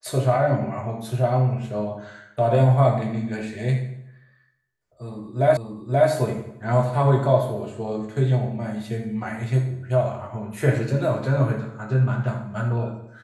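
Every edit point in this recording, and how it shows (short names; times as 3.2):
5.57 repeat of the last 0.53 s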